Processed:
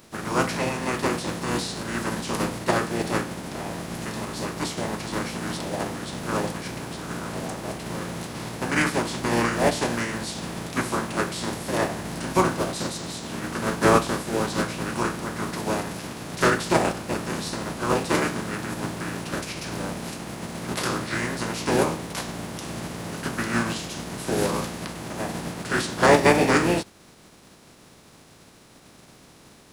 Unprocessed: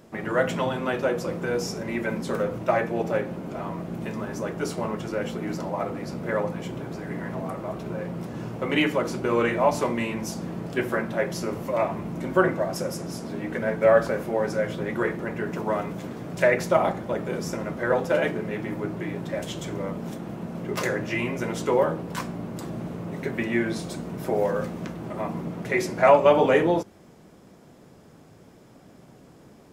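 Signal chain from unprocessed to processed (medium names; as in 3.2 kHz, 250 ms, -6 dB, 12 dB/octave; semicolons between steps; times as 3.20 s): spectral contrast reduction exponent 0.53; formant shift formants -5 st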